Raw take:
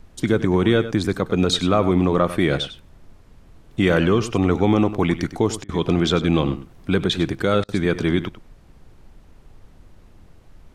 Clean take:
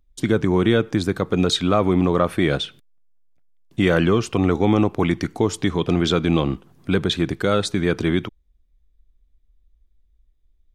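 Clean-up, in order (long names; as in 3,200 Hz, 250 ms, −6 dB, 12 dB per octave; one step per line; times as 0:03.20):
repair the gap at 0:05.64/0:07.64, 46 ms
noise reduction from a noise print 11 dB
echo removal 98 ms −13.5 dB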